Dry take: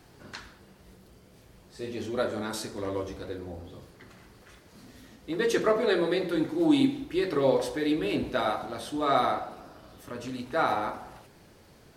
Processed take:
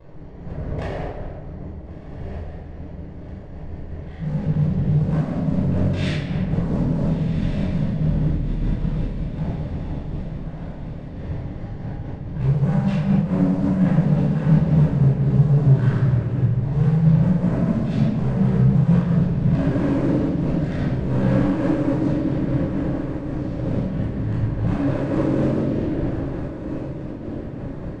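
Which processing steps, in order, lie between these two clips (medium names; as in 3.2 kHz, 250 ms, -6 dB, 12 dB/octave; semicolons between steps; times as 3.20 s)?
local Wiener filter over 15 samples; dynamic bell 420 Hz, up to +7 dB, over -38 dBFS, Q 1.1; compression 4:1, threshold -27 dBFS, peak gain reduction 12.5 dB; waveshaping leveller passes 3; peak limiter -26.5 dBFS, peak gain reduction 10 dB; waveshaping leveller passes 1; speed mistake 78 rpm record played at 33 rpm; echo that smears into a reverb 1420 ms, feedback 55%, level -9.5 dB; simulated room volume 1000 m³, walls mixed, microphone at 5.2 m; random flutter of the level, depth 60%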